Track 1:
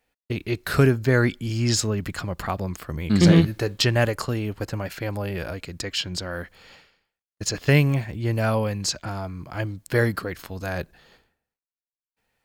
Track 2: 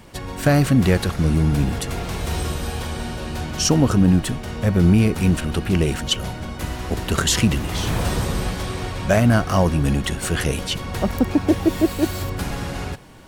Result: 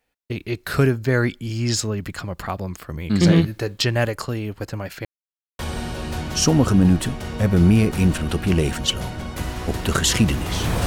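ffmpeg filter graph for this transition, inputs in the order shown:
-filter_complex "[0:a]apad=whole_dur=10.86,atrim=end=10.86,asplit=2[a][b];[a]atrim=end=5.05,asetpts=PTS-STARTPTS,afade=t=out:st=5.046:d=0.004:c=hsin[c];[b]atrim=start=5.05:end=5.59,asetpts=PTS-STARTPTS,volume=0[d];[1:a]atrim=start=2.82:end=8.09,asetpts=PTS-STARTPTS,afade=t=in:d=0.004:c=hsin[e];[c][d][e]concat=n=3:v=0:a=1"

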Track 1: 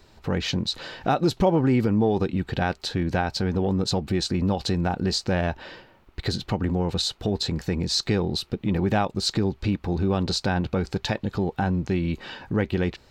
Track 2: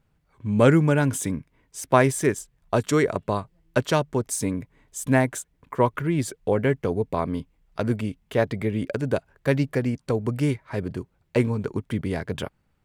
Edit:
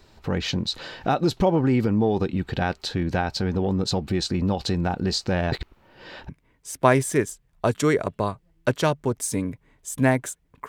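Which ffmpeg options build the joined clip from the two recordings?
-filter_complex "[0:a]apad=whole_dur=10.68,atrim=end=10.68,asplit=2[a][b];[a]atrim=end=5.522[c];[b]atrim=start=5.518:end=6.292,asetpts=PTS-STARTPTS,areverse[d];[1:a]atrim=start=1.378:end=5.77[e];[c][d]acrossfade=d=0.004:c1=hsin:c2=hsin[f];[f][e]acrossfade=d=0.004:c1=hsin:c2=hsin"

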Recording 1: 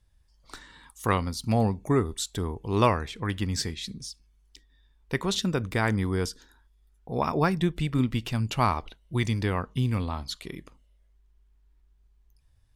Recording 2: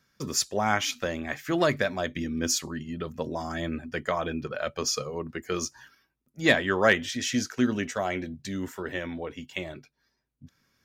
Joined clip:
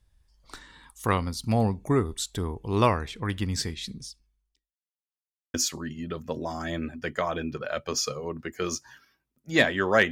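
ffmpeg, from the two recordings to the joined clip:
-filter_complex "[0:a]apad=whole_dur=10.11,atrim=end=10.11,asplit=2[a][b];[a]atrim=end=4.77,asetpts=PTS-STARTPTS,afade=t=out:st=3.98:d=0.79:c=qua[c];[b]atrim=start=4.77:end=5.54,asetpts=PTS-STARTPTS,volume=0[d];[1:a]atrim=start=2.44:end=7.01,asetpts=PTS-STARTPTS,afade=t=in:d=0.004:c=hsin[e];[c][d][e]concat=n=3:v=0:a=1"

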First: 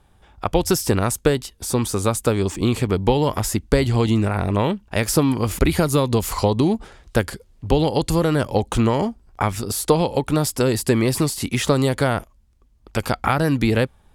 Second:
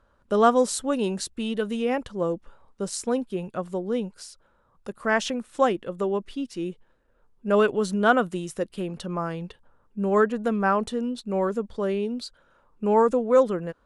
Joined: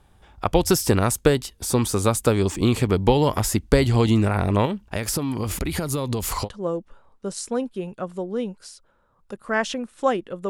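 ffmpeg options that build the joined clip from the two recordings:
-filter_complex "[0:a]asettb=1/sr,asplit=3[a][b][c];[a]atrim=end=4.654[d];[b]atrim=start=4.65:end=6.49,asetpts=PTS-STARTPTS,afade=t=in:d=0.004:c=qsin,afade=t=out:st=1.836:d=0.004:c=qsin,acompressor=threshold=-21dB:ratio=6:attack=3.2:release=140:knee=1:detection=peak[e];[c]atrim=start=6.486[f];[d][e]acrossfade=d=0.004:c1=hsin:c2=qsin[g];[g][f]acrossfade=d=0.004:c1=qsin:c2=hsin,apad=whole_dur=10.49,atrim=end=10.49,atrim=end=6.49,asetpts=PTS-STARTPTS[h];[1:a]atrim=start=1.99:end=6.05,asetpts=PTS-STARTPTS[i];[h][i]acrossfade=d=0.06:c1=tri:c2=tri"

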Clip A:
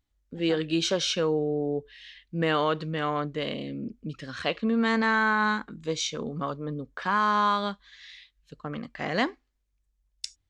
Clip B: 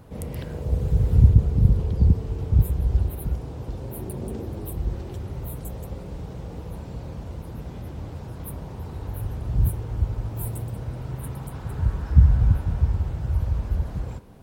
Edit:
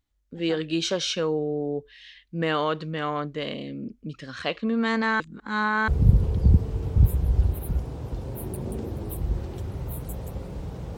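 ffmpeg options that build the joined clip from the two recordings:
-filter_complex "[0:a]apad=whole_dur=10.97,atrim=end=10.97,asplit=2[a][b];[a]atrim=end=5.202[c];[b]atrim=start=5.198:end=5.882,asetpts=PTS-STARTPTS,areverse[d];[1:a]atrim=start=1.438:end=6.53[e];[c][d]acrossfade=d=0.004:c1=hsin:c2=hsin[f];[f][e]acrossfade=d=0.004:c1=hsin:c2=hsin"

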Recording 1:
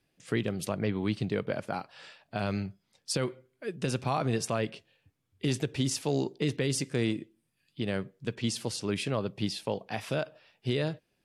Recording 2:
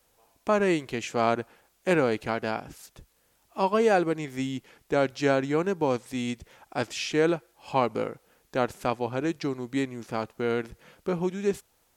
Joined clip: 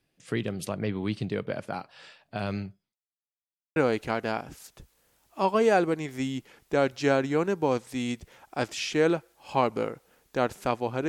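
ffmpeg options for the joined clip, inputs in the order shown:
-filter_complex "[0:a]apad=whole_dur=11.08,atrim=end=11.08,asplit=2[a][b];[a]atrim=end=2.95,asetpts=PTS-STARTPTS,afade=t=out:st=2.48:d=0.47:c=qsin[c];[b]atrim=start=2.95:end=3.76,asetpts=PTS-STARTPTS,volume=0[d];[1:a]atrim=start=1.95:end=9.27,asetpts=PTS-STARTPTS,afade=t=in:d=0.004:c=hsin[e];[c][d][e]concat=n=3:v=0:a=1"

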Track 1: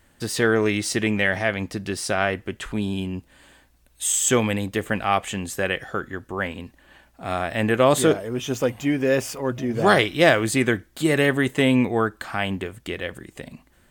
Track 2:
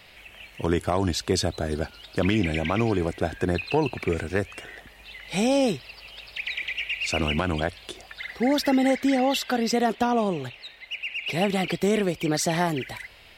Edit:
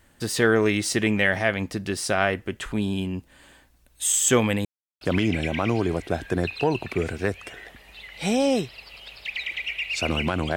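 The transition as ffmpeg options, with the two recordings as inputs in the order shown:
-filter_complex "[0:a]apad=whole_dur=10.56,atrim=end=10.56,asplit=2[a][b];[a]atrim=end=4.65,asetpts=PTS-STARTPTS,afade=t=out:st=4.646:d=0.004:c=hsin[c];[b]atrim=start=4.65:end=5.01,asetpts=PTS-STARTPTS,volume=0[d];[1:a]atrim=start=2.12:end=7.67,asetpts=PTS-STARTPTS,afade=t=in:d=0.004:c=hsin[e];[c][d][e]concat=n=3:v=0:a=1"

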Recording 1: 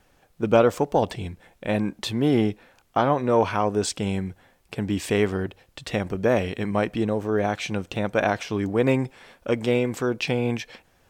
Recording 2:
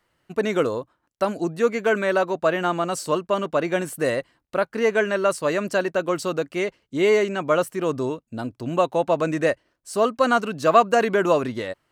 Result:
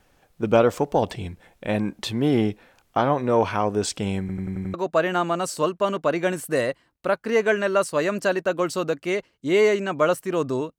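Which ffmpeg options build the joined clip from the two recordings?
-filter_complex "[0:a]apad=whole_dur=10.78,atrim=end=10.78,asplit=6[a][b][c][d][e][f];[a]atrim=end=4.292[g];[b]atrim=start=4.198:end=4.292[h];[c]atrim=start=4.198:end=4.292[i];[d]atrim=start=4.198:end=4.292[j];[e]atrim=start=4.198:end=4.292[k];[f]atrim=start=4.198:end=4.292[l];[1:a]atrim=start=2.228:end=8.27[m];[g][h]acrossfade=d=0.004:c1=hsin:c2=hsin[n];[n][i]acrossfade=d=0.004:c1=hsin:c2=hsin[o];[o][j]acrossfade=d=0.004:c1=hsin:c2=hsin[p];[p][k]acrossfade=d=0.004:c1=hsin:c2=hsin[q];[q][l]acrossfade=d=0.004:c1=hsin:c2=hsin[r];[r][m]acrossfade=d=0.004:c1=hsin:c2=hsin"

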